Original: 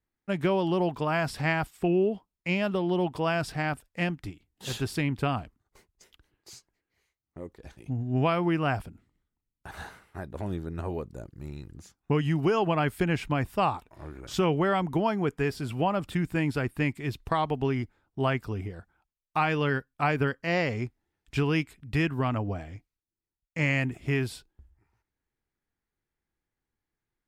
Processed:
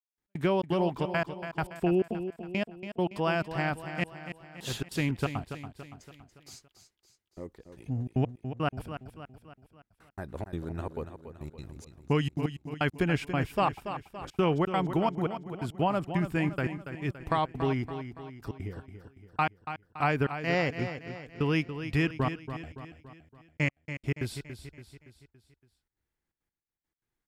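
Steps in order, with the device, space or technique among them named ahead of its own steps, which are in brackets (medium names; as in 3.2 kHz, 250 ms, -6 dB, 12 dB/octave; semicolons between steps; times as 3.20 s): 11.55–12.93 s: peaking EQ 6.5 kHz +5.5 dB 2.9 oct; trance gate with a delay (trance gate "..x.xxx.xxxx.x.." 171 bpm -60 dB; feedback delay 283 ms, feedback 50%, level -10 dB); trim -1 dB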